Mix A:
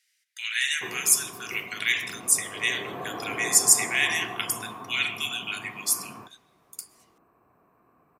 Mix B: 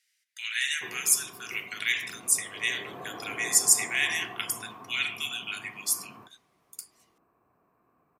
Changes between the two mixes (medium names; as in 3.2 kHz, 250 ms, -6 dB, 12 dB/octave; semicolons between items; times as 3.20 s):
background -6.0 dB; reverb: off